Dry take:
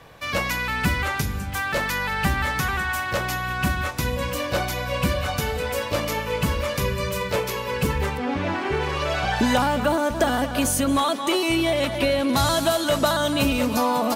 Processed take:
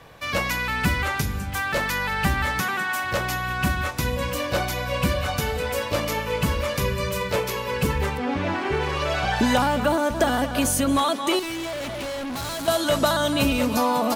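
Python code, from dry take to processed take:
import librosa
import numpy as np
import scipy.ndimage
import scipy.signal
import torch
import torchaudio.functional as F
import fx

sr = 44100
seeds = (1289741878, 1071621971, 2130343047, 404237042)

y = fx.highpass(x, sr, hz=160.0, slope=24, at=(2.6, 3.03))
y = fx.overload_stage(y, sr, gain_db=29.0, at=(11.39, 12.68))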